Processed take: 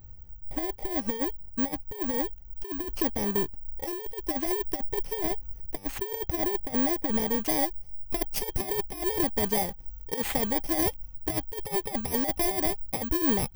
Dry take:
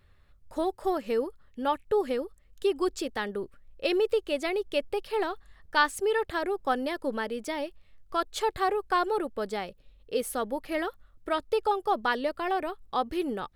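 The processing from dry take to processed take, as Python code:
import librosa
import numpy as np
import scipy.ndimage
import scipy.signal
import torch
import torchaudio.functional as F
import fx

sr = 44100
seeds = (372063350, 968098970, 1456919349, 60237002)

y = fx.bit_reversed(x, sr, seeds[0], block=32)
y = fx.over_compress(y, sr, threshold_db=-30.0, ratio=-0.5)
y = fx.high_shelf(y, sr, hz=4600.0, db=fx.steps((0.0, -10.5), (7.44, -2.5)))
y = (np.kron(y[::2], np.eye(2)[0]) * 2)[:len(y)]
y = fx.low_shelf(y, sr, hz=180.0, db=12.0)
y = fx.small_body(y, sr, hz=(800.0, 3200.0), ring_ms=85, db=9)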